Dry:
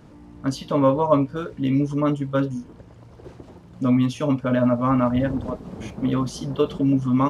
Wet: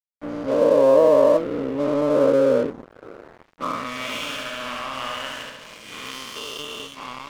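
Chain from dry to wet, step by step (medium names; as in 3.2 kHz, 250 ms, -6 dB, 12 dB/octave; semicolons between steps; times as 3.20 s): every event in the spectrogram widened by 480 ms; level rider gain up to 15 dB; band-pass sweep 480 Hz -> 2.8 kHz, 3.09–4.19 s; crossover distortion -35 dBFS; 3.94–6.11 s: flutter echo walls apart 11.8 m, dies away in 1 s; trim +1.5 dB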